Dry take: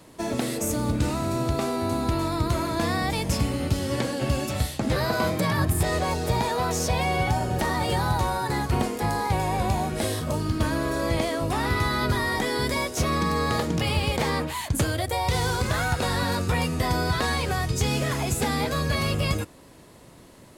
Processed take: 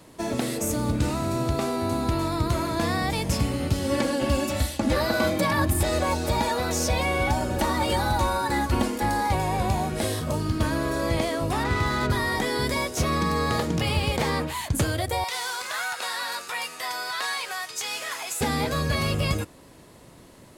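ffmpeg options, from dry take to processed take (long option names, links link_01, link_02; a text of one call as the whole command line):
ffmpeg -i in.wav -filter_complex "[0:a]asettb=1/sr,asplit=3[link_01][link_02][link_03];[link_01]atrim=end=3.844[link_04];[link_02]atrim=start=3.84:end=9.35,asetpts=PTS-STARTPTS,afade=type=in:duration=0.004:curve=qsin,afade=type=out:start_time=5.506:duration=0.004:curve=qsin,aecho=1:1:3.5:0.65,atrim=end_sample=242991[link_05];[link_03]atrim=start=9.346[link_06];[link_04][link_05]acrossfade=duration=0.004:curve1=hsin:curve2=qsin[link_07];[link_07][link_06]acrossfade=duration=0.004:curve1=qsin:curve2=hsin,asplit=3[link_08][link_09][link_10];[link_08]afade=type=out:start_time=11.63:duration=0.02[link_11];[link_09]adynamicsmooth=sensitivity=5.5:basefreq=1300,afade=type=in:start_time=11.63:duration=0.02,afade=type=out:start_time=12.09:duration=0.02[link_12];[link_10]afade=type=in:start_time=12.09:duration=0.02[link_13];[link_11][link_12][link_13]amix=inputs=3:normalize=0,asettb=1/sr,asplit=3[link_14][link_15][link_16];[link_14]atrim=end=15.244[link_17];[link_15]atrim=start=15.24:end=18.41,asetpts=PTS-STARTPTS,afade=type=in:duration=0.004:curve=qsin,afade=type=out:start_time=3.166:duration=0.004:curve=qsin,highpass=1000[link_18];[link_16]atrim=start=18.406[link_19];[link_17][link_18]acrossfade=duration=0.004:curve1=hsin:curve2=qsin[link_20];[link_20][link_19]acrossfade=duration=0.004:curve1=qsin:curve2=hsin" out.wav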